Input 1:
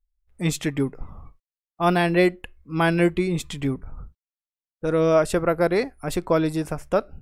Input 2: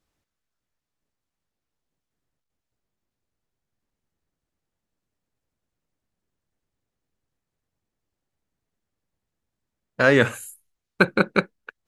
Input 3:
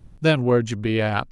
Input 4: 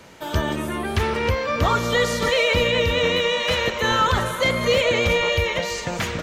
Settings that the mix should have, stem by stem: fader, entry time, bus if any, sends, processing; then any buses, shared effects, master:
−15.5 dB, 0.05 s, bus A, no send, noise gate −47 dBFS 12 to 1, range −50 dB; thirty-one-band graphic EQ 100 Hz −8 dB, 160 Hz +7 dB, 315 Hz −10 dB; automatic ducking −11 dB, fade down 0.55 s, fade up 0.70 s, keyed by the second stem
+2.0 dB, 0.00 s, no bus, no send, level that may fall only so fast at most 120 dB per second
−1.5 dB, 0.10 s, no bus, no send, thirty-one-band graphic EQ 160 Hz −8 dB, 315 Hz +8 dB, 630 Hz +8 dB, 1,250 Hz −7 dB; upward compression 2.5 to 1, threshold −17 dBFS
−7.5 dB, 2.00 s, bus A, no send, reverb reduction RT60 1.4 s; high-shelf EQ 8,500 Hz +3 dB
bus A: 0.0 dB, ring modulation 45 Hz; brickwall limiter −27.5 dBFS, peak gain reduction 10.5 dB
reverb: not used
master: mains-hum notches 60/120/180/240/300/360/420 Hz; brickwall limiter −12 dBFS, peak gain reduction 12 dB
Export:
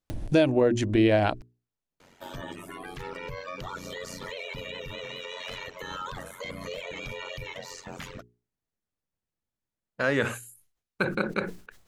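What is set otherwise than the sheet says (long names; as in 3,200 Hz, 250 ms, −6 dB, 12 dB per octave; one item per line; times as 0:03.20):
stem 1: muted
stem 2 +2.0 dB → −8.0 dB
stem 4: missing high-shelf EQ 8,500 Hz +3 dB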